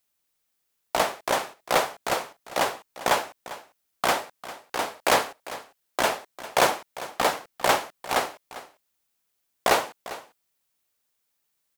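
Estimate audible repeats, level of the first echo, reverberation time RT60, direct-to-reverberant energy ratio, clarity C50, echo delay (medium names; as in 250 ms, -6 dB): 1, -16.0 dB, no reverb, no reverb, no reverb, 399 ms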